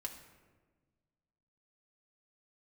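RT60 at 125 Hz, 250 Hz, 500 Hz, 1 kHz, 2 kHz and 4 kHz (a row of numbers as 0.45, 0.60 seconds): 2.1, 1.9, 1.6, 1.2, 1.1, 0.75 seconds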